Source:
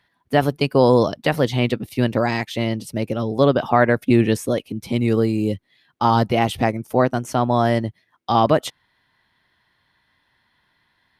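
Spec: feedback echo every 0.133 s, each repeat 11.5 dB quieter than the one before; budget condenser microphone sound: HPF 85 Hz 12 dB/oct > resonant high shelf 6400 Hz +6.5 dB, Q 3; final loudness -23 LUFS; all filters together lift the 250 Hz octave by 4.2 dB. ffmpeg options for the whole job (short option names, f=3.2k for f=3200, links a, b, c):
-af "highpass=85,equalizer=f=250:t=o:g=5,highshelf=f=6.4k:t=q:w=3:g=6.5,aecho=1:1:133|266|399:0.266|0.0718|0.0194,volume=-5.5dB"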